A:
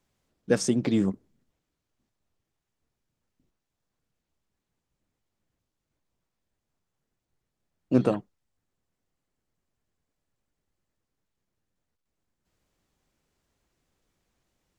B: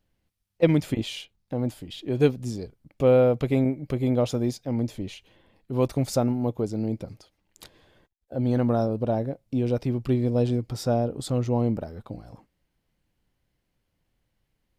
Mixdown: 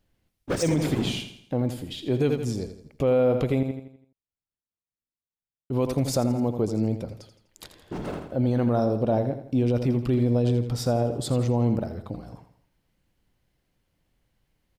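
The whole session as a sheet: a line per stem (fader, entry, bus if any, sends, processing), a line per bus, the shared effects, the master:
−9.5 dB, 0.00 s, no send, echo send −15.5 dB, leveller curve on the samples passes 5; random phases in short frames; automatic ducking −10 dB, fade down 1.25 s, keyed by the second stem
+2.5 dB, 0.00 s, muted 0:03.63–0:05.70, no send, echo send −10.5 dB, no processing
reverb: not used
echo: repeating echo 83 ms, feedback 42%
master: brickwall limiter −14.5 dBFS, peak gain reduction 10.5 dB

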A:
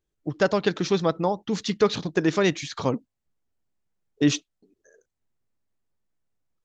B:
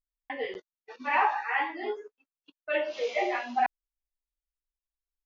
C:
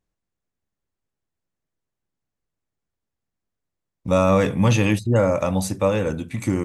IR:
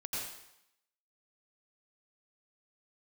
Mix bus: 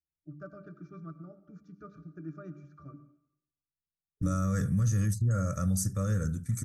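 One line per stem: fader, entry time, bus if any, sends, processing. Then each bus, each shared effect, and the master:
+1.5 dB, 0.00 s, send −13 dB, bass and treble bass −13 dB, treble −13 dB; mains-hum notches 50/100/150/200/250/300/350/400/450 Hz; resonances in every octave D, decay 0.12 s
muted
−2.0 dB, 0.15 s, no send, noise gate with hold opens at −25 dBFS; comb filter 1.7 ms, depth 48%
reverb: on, RT60 0.80 s, pre-delay 81 ms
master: drawn EQ curve 170 Hz 0 dB, 970 Hz −29 dB, 1,400 Hz −1 dB, 2,600 Hz −29 dB, 3,800 Hz −19 dB, 5,700 Hz +1 dB; brickwall limiter −20.5 dBFS, peak gain reduction 9.5 dB

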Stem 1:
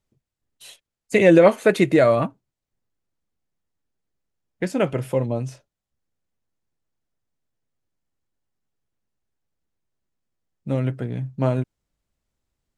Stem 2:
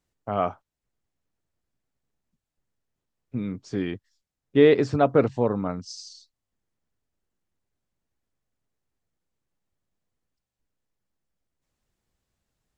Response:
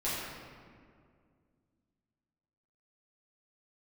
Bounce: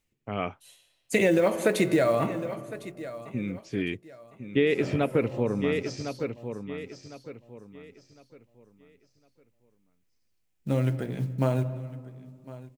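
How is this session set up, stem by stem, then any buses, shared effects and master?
−2.0 dB, 0.00 s, send −20 dB, echo send −20 dB, high-shelf EQ 6,000 Hz +9.5 dB; hum removal 60.06 Hz, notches 19; floating-point word with a short mantissa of 4 bits; automatic ducking −23 dB, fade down 0.25 s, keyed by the second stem
−2.0 dB, 0.00 s, no send, echo send −9.5 dB, drawn EQ curve 440 Hz 0 dB, 670 Hz −7 dB, 1,400 Hz −4 dB, 2,400 Hz +10 dB, 4,400 Hz −2 dB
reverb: on, RT60 2.1 s, pre-delay 6 ms
echo: repeating echo 1,056 ms, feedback 29%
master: downward compressor 6 to 1, threshold −19 dBFS, peak gain reduction 9.5 dB

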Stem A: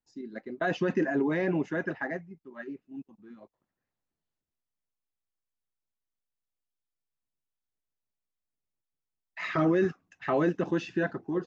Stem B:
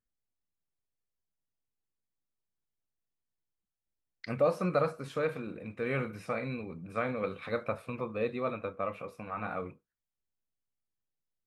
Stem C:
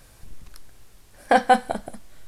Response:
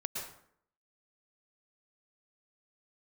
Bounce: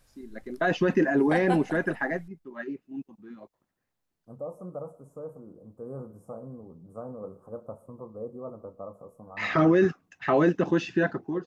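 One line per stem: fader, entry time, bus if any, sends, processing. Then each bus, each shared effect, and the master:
−4.5 dB, 0.00 s, no send, automatic gain control gain up to 9 dB
−7.5 dB, 0.00 s, send −19.5 dB, inverse Chebyshev band-stop filter 2,000–4,000 Hz, stop band 60 dB; parametric band 9,500 Hz −3.5 dB 0.24 octaves; speech leveller within 4 dB 2 s
−14.0 dB, 0.00 s, send −20.5 dB, no processing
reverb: on, RT60 0.65 s, pre-delay 102 ms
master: no processing

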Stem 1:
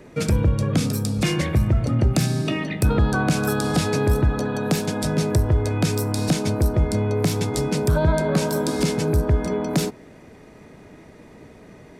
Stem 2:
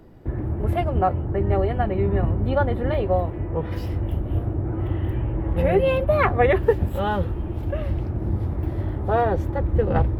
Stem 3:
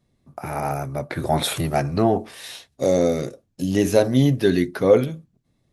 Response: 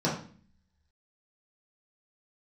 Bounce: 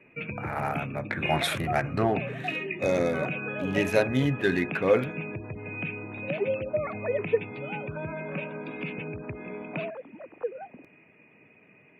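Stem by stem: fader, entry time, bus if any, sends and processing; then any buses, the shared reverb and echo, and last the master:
−2.0 dB, 0.00 s, no send, transistor ladder low-pass 2,600 Hz, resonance 85%; gate on every frequency bin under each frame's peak −30 dB strong; high-pass filter 110 Hz 24 dB per octave
−15.0 dB, 0.65 s, no send, three sine waves on the formant tracks
−8.5 dB, 0.00 s, no send, adaptive Wiener filter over 9 samples; parametric band 1,800 Hz +12 dB 1.6 octaves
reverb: not used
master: no processing

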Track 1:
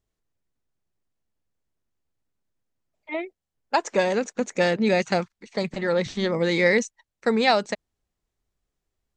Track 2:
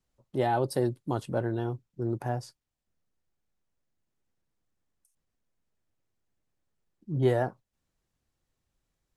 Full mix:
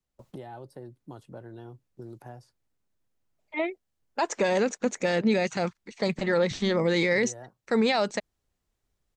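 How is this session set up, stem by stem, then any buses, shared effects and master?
+1.0 dB, 0.45 s, no send, no processing
−14.5 dB, 0.00 s, no send, noise gate with hold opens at −58 dBFS; multiband upward and downward compressor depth 100%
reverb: not used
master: brickwall limiter −15 dBFS, peak gain reduction 10.5 dB

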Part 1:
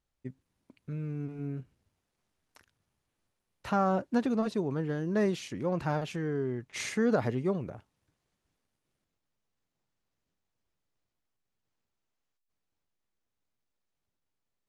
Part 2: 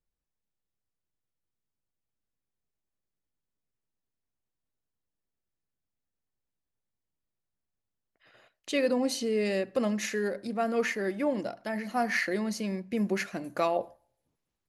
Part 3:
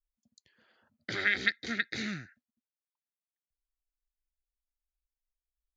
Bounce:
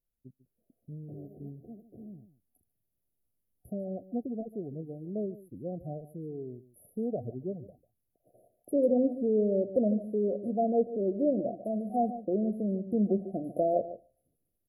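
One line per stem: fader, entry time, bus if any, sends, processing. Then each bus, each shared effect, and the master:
−10.0 dB, 0.00 s, no send, echo send −17 dB, reverb reduction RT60 0.86 s; phaser swept by the level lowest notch 510 Hz, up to 2,200 Hz, full sweep at −28.5 dBFS
−3.0 dB, 0.00 s, no send, echo send −13 dB, treble cut that deepens with the level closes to 940 Hz, closed at −25.5 dBFS
−13.0 dB, 0.00 s, no send, echo send −14.5 dB, brickwall limiter −18 dBFS, peak gain reduction 6.5 dB; automatic ducking −8 dB, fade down 0.25 s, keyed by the second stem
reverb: not used
echo: single-tap delay 146 ms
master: brick-wall band-stop 750–9,900 Hz; high-shelf EQ 7,000 Hz +9.5 dB; automatic gain control gain up to 5 dB

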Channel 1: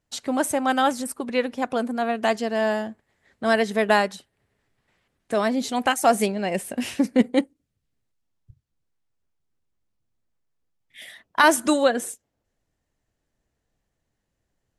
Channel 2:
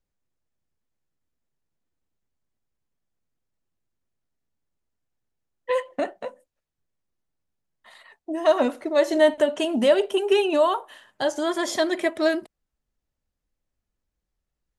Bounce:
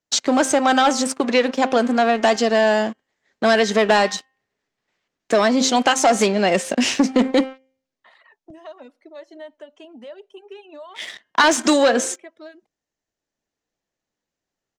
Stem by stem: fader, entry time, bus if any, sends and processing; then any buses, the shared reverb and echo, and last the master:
0.0 dB, 0.00 s, no send, parametric band 6,600 Hz +12 dB 1 octave; hum removal 263.5 Hz, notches 12; leveller curve on the samples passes 3
−18.0 dB, 0.20 s, no send, reverb reduction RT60 0.82 s; multiband upward and downward compressor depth 70%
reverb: not used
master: three-way crossover with the lows and the highs turned down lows −13 dB, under 190 Hz, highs −21 dB, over 6,100 Hz; downward compressor 2 to 1, threshold −14 dBFS, peak gain reduction 5 dB

